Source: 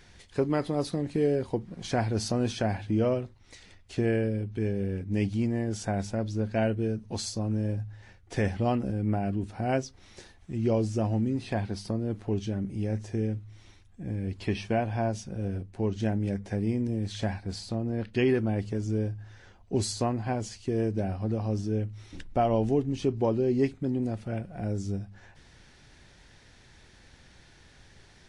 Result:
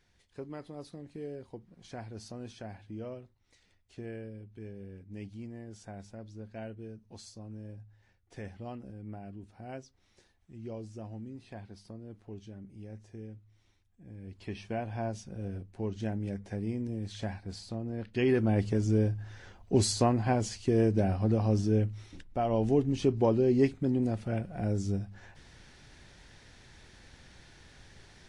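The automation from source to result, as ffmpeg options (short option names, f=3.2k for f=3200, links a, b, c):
-af "volume=13dB,afade=t=in:st=14.09:d=0.96:silence=0.334965,afade=t=in:st=18.12:d=0.47:silence=0.375837,afade=t=out:st=21.85:d=0.4:silence=0.237137,afade=t=in:st=22.25:d=0.57:silence=0.298538"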